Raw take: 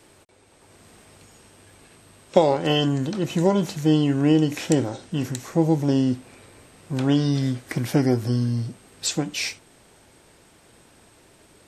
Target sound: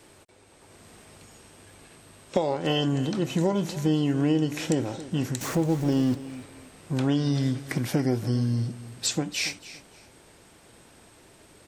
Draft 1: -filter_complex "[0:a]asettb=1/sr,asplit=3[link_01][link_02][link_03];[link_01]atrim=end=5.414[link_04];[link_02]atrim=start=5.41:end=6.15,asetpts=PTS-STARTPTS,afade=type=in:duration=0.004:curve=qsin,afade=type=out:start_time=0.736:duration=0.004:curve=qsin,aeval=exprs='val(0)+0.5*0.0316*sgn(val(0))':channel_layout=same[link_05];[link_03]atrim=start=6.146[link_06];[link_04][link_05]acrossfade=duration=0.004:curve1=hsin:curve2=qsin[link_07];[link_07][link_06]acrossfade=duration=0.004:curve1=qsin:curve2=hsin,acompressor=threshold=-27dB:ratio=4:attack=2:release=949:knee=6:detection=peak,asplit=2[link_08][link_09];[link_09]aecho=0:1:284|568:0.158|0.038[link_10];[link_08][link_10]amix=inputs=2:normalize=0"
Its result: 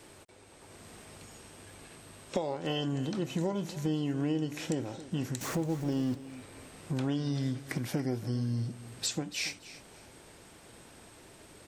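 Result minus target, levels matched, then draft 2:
downward compressor: peak gain reduction +8 dB
-filter_complex "[0:a]asettb=1/sr,asplit=3[link_01][link_02][link_03];[link_01]atrim=end=5.414[link_04];[link_02]atrim=start=5.41:end=6.15,asetpts=PTS-STARTPTS,afade=type=in:duration=0.004:curve=qsin,afade=type=out:start_time=0.736:duration=0.004:curve=qsin,aeval=exprs='val(0)+0.5*0.0316*sgn(val(0))':channel_layout=same[link_05];[link_03]atrim=start=6.146[link_06];[link_04][link_05]acrossfade=duration=0.004:curve1=hsin:curve2=qsin[link_07];[link_07][link_06]acrossfade=duration=0.004:curve1=qsin:curve2=hsin,acompressor=threshold=-16.5dB:ratio=4:attack=2:release=949:knee=6:detection=peak,asplit=2[link_08][link_09];[link_09]aecho=0:1:284|568:0.158|0.038[link_10];[link_08][link_10]amix=inputs=2:normalize=0"

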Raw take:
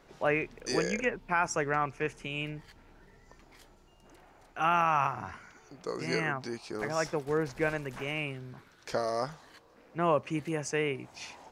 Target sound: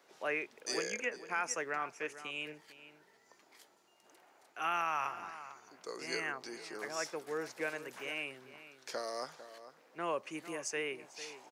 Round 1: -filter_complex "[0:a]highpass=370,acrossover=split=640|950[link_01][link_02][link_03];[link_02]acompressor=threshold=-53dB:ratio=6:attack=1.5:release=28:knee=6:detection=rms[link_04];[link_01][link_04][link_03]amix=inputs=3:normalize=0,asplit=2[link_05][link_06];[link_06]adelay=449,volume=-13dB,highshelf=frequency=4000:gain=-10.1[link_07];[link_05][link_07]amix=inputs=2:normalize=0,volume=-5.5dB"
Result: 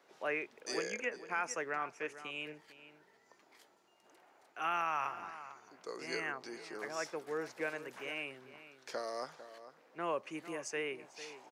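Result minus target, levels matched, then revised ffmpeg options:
8,000 Hz band −3.5 dB
-filter_complex "[0:a]highpass=370,highshelf=frequency=4100:gain=6.5,acrossover=split=640|950[link_01][link_02][link_03];[link_02]acompressor=threshold=-53dB:ratio=6:attack=1.5:release=28:knee=6:detection=rms[link_04];[link_01][link_04][link_03]amix=inputs=3:normalize=0,asplit=2[link_05][link_06];[link_06]adelay=449,volume=-13dB,highshelf=frequency=4000:gain=-10.1[link_07];[link_05][link_07]amix=inputs=2:normalize=0,volume=-5.5dB"

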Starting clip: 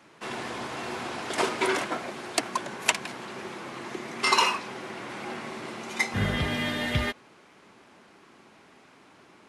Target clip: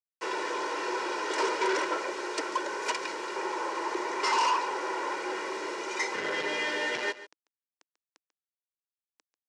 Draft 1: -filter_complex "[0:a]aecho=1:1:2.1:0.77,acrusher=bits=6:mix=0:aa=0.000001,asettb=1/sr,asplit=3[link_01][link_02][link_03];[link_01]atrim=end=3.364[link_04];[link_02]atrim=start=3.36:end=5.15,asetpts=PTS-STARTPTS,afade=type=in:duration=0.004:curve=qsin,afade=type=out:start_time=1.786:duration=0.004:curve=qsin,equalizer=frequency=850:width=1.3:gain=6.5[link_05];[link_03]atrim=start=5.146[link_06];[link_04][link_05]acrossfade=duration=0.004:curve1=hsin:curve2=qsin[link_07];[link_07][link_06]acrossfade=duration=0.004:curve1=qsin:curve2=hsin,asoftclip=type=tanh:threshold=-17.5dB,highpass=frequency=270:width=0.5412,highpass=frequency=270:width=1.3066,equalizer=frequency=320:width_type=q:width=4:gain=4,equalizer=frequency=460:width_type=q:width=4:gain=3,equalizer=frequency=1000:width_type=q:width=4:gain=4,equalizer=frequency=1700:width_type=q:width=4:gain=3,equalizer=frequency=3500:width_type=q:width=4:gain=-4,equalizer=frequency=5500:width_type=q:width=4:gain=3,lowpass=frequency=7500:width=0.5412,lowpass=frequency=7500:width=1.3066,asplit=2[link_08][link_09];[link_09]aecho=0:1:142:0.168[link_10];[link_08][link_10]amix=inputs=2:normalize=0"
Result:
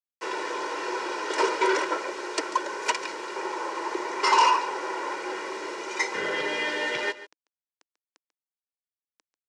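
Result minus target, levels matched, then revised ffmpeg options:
soft clipping: distortion −5 dB
-filter_complex "[0:a]aecho=1:1:2.1:0.77,acrusher=bits=6:mix=0:aa=0.000001,asettb=1/sr,asplit=3[link_01][link_02][link_03];[link_01]atrim=end=3.364[link_04];[link_02]atrim=start=3.36:end=5.15,asetpts=PTS-STARTPTS,afade=type=in:duration=0.004:curve=qsin,afade=type=out:start_time=1.786:duration=0.004:curve=qsin,equalizer=frequency=850:width=1.3:gain=6.5[link_05];[link_03]atrim=start=5.146[link_06];[link_04][link_05]acrossfade=duration=0.004:curve1=hsin:curve2=qsin[link_07];[link_07][link_06]acrossfade=duration=0.004:curve1=qsin:curve2=hsin,asoftclip=type=tanh:threshold=-26dB,highpass=frequency=270:width=0.5412,highpass=frequency=270:width=1.3066,equalizer=frequency=320:width_type=q:width=4:gain=4,equalizer=frequency=460:width_type=q:width=4:gain=3,equalizer=frequency=1000:width_type=q:width=4:gain=4,equalizer=frequency=1700:width_type=q:width=4:gain=3,equalizer=frequency=3500:width_type=q:width=4:gain=-4,equalizer=frequency=5500:width_type=q:width=4:gain=3,lowpass=frequency=7500:width=0.5412,lowpass=frequency=7500:width=1.3066,asplit=2[link_08][link_09];[link_09]aecho=0:1:142:0.168[link_10];[link_08][link_10]amix=inputs=2:normalize=0"

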